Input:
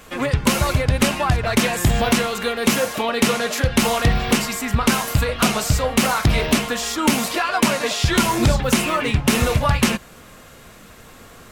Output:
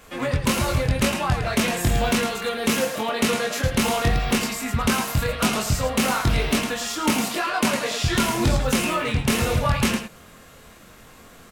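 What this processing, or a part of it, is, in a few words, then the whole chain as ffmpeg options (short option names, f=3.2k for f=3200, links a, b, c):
slapback doubling: -filter_complex "[0:a]asplit=3[a][b][c];[b]adelay=23,volume=-3.5dB[d];[c]adelay=108,volume=-7dB[e];[a][d][e]amix=inputs=3:normalize=0,volume=-5.5dB"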